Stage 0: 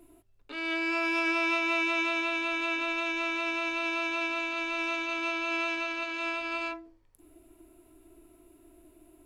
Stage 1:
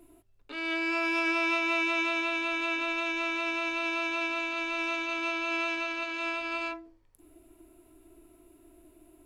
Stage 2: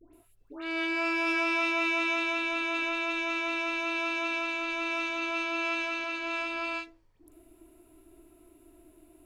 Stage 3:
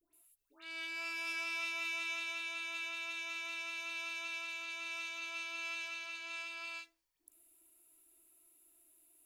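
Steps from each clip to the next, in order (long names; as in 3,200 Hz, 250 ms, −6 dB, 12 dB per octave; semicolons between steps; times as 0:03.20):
no processing that can be heard
all-pass dispersion highs, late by 133 ms, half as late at 1,200 Hz
first-order pre-emphasis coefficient 0.97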